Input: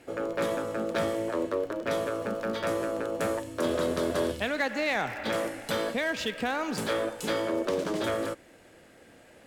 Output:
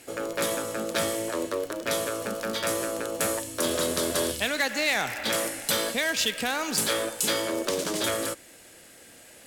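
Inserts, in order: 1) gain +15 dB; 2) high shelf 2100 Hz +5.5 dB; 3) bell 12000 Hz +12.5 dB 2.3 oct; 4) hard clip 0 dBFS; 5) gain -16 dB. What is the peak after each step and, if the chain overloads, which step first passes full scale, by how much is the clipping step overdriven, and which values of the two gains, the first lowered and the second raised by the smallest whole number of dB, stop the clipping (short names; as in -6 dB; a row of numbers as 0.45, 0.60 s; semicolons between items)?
-0.5, +1.5, +5.0, 0.0, -16.0 dBFS; step 2, 5.0 dB; step 1 +10 dB, step 5 -11 dB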